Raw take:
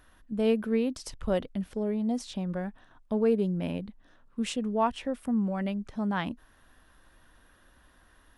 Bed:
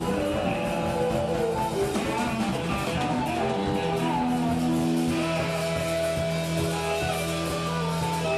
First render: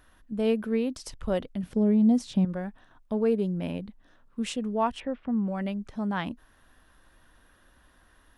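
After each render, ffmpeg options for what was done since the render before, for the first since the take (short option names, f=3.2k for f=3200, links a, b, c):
-filter_complex "[0:a]asettb=1/sr,asplit=3[a][b][c];[a]atrim=end=1.634[d];[b]atrim=start=1.63:end=2.45,asetpts=PTS-STARTPTS,afade=t=in:d=0.004:c=qsin,afade=t=out:st=0.816:d=0.004:c=qsin,equalizer=f=160:w=0.76:g=11.5[e];[c]atrim=start=2.446[f];[d][e]acrossfade=d=0.004:c1=hsin:c2=qsin[g];[g][f]acrossfade=d=0.004:c1=qsin:c2=hsin,asettb=1/sr,asplit=3[h][i][j];[h]atrim=end=5.004[k];[i]atrim=start=5:end=5.48,asetpts=PTS-STARTPTS,afade=t=in:d=0.004:c=qsin,afade=t=out:st=0.476:d=0.004:c=qsin,lowpass=f=3.1k:w=0.5412,lowpass=f=3.1k:w=1.3066[l];[j]atrim=start=5.476[m];[k][l]acrossfade=d=0.004:c1=hsin:c2=qsin[n];[n][m]acrossfade=d=0.004:c1=qsin:c2=hsin"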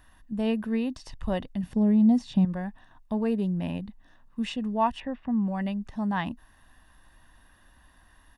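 -filter_complex "[0:a]acrossover=split=4800[a][b];[b]acompressor=threshold=-56dB:ratio=4:attack=1:release=60[c];[a][c]amix=inputs=2:normalize=0,aecho=1:1:1.1:0.5"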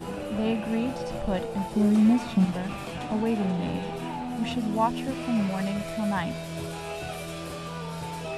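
-filter_complex "[1:a]volume=-8dB[a];[0:a][a]amix=inputs=2:normalize=0"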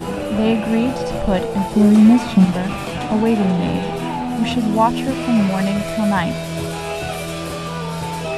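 -af "volume=10dB,alimiter=limit=-3dB:level=0:latency=1"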